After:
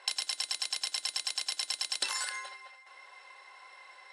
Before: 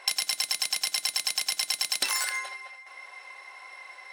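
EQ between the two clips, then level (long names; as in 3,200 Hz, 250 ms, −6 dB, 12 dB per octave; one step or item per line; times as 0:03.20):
loudspeaker in its box 360–8,900 Hz, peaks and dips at 690 Hz −6 dB, 1,200 Hz −3 dB, 2,200 Hz −8 dB, 5,900 Hz −6 dB
−2.5 dB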